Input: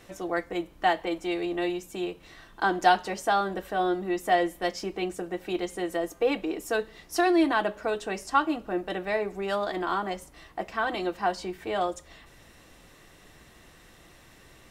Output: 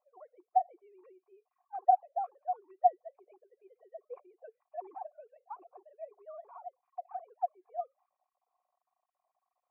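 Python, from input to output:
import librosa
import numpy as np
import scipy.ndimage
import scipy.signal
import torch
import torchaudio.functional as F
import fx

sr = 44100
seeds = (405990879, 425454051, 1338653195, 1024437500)

y = fx.sine_speech(x, sr)
y = fx.formant_cascade(y, sr, vowel='a')
y = fx.stretch_vocoder(y, sr, factor=0.66)
y = y * 10.0 ** (-4.0 / 20.0)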